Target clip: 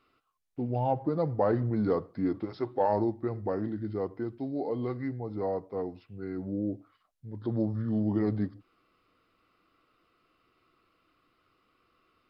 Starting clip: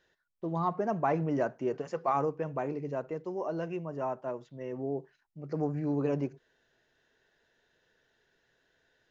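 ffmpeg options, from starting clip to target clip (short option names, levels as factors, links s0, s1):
-af "asetrate=32667,aresample=44100,volume=1.26"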